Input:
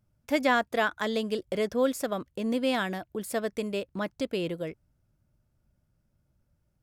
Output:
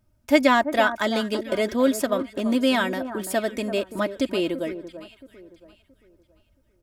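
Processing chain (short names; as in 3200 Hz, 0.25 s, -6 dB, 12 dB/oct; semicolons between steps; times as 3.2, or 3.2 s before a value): comb 3.2 ms, depth 64%; on a send: echo with dull and thin repeats by turns 0.337 s, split 1500 Hz, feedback 52%, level -11 dB; on the sum: gain +5 dB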